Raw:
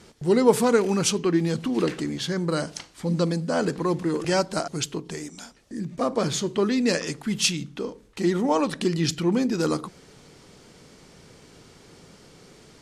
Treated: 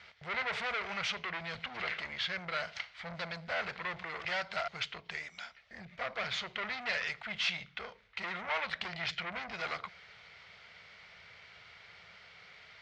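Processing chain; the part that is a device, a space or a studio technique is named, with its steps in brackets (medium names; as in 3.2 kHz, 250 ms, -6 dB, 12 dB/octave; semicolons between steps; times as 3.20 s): 4.92–6.16 s: dynamic bell 1.2 kHz, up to -4 dB, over -38 dBFS, Q 0.77; scooped metal amplifier (valve stage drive 28 dB, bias 0.45; cabinet simulation 90–3800 Hz, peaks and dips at 140 Hz -7 dB, 280 Hz -5 dB, 660 Hz +7 dB, 1.4 kHz +5 dB, 2.1 kHz +10 dB; amplifier tone stack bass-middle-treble 10-0-10); trim +4.5 dB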